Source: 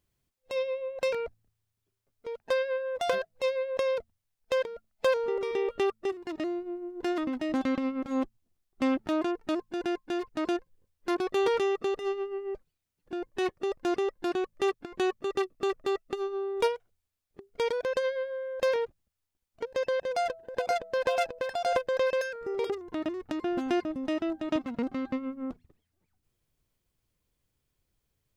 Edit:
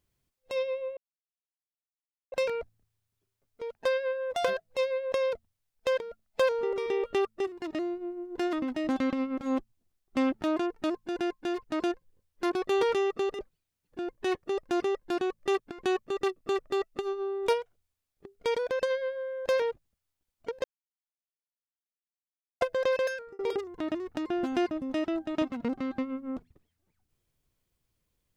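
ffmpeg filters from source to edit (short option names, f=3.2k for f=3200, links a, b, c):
-filter_complex "[0:a]asplit=6[a][b][c][d][e][f];[a]atrim=end=0.97,asetpts=PTS-STARTPTS,afade=t=out:st=0.966:d=0.004:c=hsin,apad=pad_dur=1.35[g];[b]atrim=start=0.97:end=12.042,asetpts=PTS-STARTPTS,afade=t=in:d=0.004:c=hsin[h];[c]atrim=start=12.528:end=19.78,asetpts=PTS-STARTPTS,afade=t=out:st=7.248:d=0.004:c=hsin[i];[d]atrim=start=19.78:end=21.75,asetpts=PTS-STARTPTS,volume=0[j];[e]atrim=start=21.75:end=22.53,asetpts=PTS-STARTPTS,afade=t=in:d=0.004:c=hsin,afade=t=out:st=0.53:d=0.25[k];[f]atrim=start=22.53,asetpts=PTS-STARTPTS,afade=t=in:d=0.004:c=hsin[l];[g][h]concat=n=2:v=0:a=1[m];[i][j][k][l]concat=n=4:v=0:a=1[n];[m][n]acrossfade=d=0.004:c1=hsin:c2=hsin"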